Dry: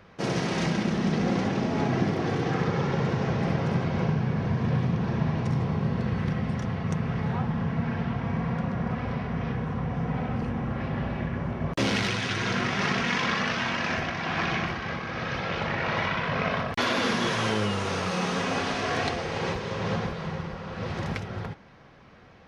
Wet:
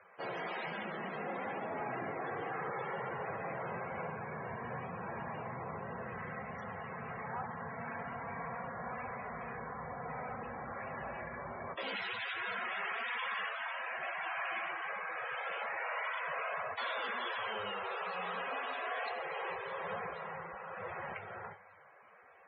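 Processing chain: three-band isolator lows -19 dB, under 490 Hz, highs -17 dB, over 6600 Hz; Schroeder reverb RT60 1.3 s, combs from 30 ms, DRR 14 dB; in parallel at -1 dB: limiter -25.5 dBFS, peak gain reduction 10.5 dB; on the sum: soft clip -23 dBFS, distortion -15 dB; flange 1.2 Hz, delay 9.4 ms, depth 9.7 ms, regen -46%; de-hum 323.4 Hz, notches 3; loudest bins only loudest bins 64; 13.49–14.03 high shelf 3300 Hz -10 dB; gain -4.5 dB

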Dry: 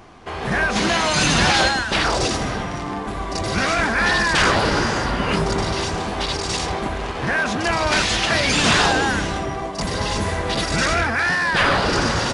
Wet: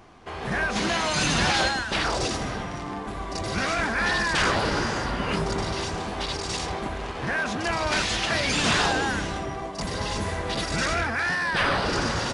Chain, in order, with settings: 11.34–11.86 notch 6900 Hz, Q 9.6; gain -6 dB

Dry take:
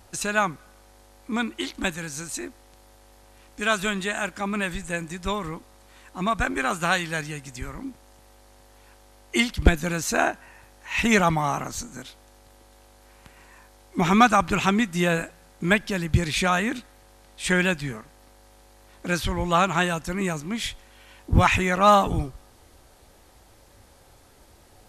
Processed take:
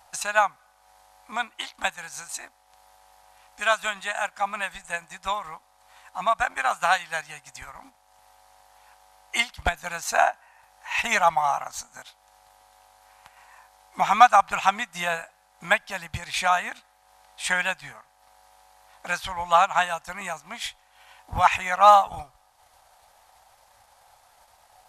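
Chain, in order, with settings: transient shaper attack +3 dB, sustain -6 dB; resonant low shelf 520 Hz -13.5 dB, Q 3; gain -2.5 dB

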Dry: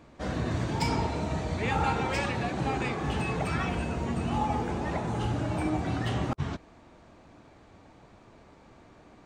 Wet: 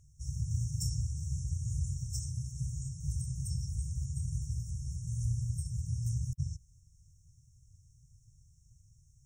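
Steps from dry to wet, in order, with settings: brick-wall FIR band-stop 150–5300 Hz; high shelf 5000 Hz +6 dB

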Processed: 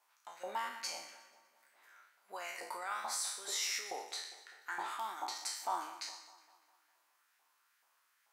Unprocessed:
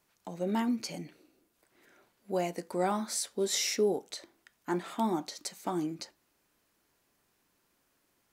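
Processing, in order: spectral trails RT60 0.66 s; limiter -23 dBFS, peak gain reduction 7.5 dB; LFO high-pass saw up 2.3 Hz 810–1700 Hz; on a send: split-band echo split 2400 Hz, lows 0.202 s, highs 0.121 s, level -15.5 dB; on the sum: gain -4.5 dB

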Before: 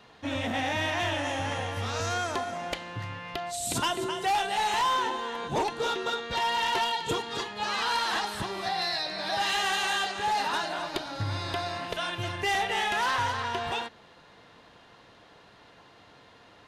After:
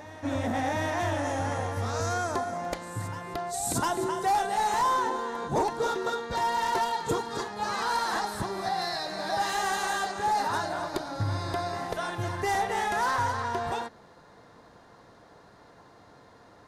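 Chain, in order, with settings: bell 2900 Hz -15 dB 0.94 oct; on a send: reverse echo 0.705 s -16 dB; on the sum: gain +2.5 dB

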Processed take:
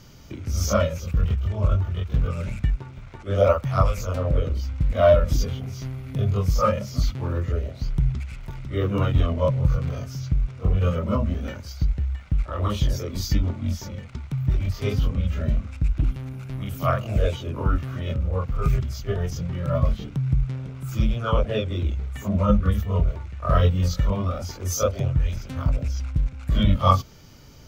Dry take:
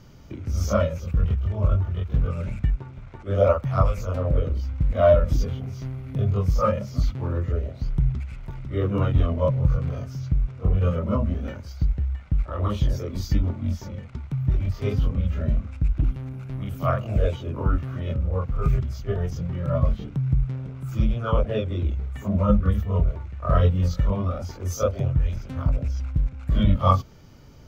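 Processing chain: high shelf 2300 Hz +9 dB

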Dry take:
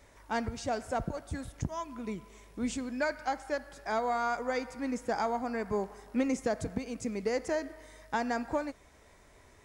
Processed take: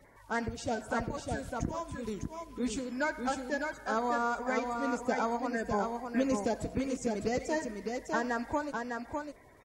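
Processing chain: bin magnitudes rounded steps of 30 dB; tapped delay 89/604 ms -18.5/-4.5 dB

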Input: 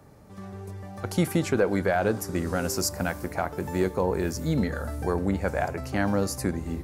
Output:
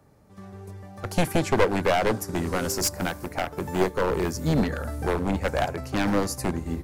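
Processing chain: one-sided fold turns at -22 dBFS; upward expander 1.5:1, over -45 dBFS; gain +6 dB

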